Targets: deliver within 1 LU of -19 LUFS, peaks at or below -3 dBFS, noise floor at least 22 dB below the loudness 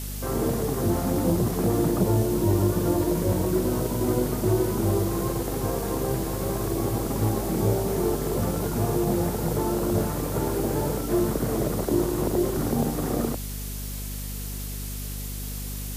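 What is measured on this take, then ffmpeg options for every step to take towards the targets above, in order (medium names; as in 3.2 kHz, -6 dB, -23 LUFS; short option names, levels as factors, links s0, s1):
hum 50 Hz; highest harmonic 250 Hz; hum level -31 dBFS; noise floor -33 dBFS; noise floor target -48 dBFS; loudness -26.0 LUFS; peak level -10.5 dBFS; loudness target -19.0 LUFS
-> -af "bandreject=f=50:t=h:w=6,bandreject=f=100:t=h:w=6,bandreject=f=150:t=h:w=6,bandreject=f=200:t=h:w=6,bandreject=f=250:t=h:w=6"
-af "afftdn=nr=15:nf=-33"
-af "volume=2.24"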